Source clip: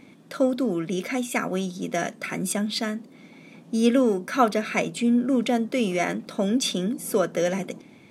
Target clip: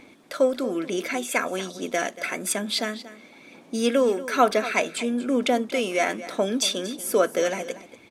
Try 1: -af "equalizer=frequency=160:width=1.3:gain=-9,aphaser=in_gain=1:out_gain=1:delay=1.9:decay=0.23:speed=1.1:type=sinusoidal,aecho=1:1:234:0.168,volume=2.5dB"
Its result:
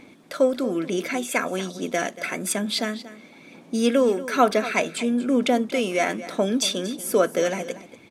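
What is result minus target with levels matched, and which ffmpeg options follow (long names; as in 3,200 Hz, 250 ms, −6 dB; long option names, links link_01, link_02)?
125 Hz band +4.0 dB
-af "equalizer=frequency=160:width=1.3:gain=-16,aphaser=in_gain=1:out_gain=1:delay=1.9:decay=0.23:speed=1.1:type=sinusoidal,aecho=1:1:234:0.168,volume=2.5dB"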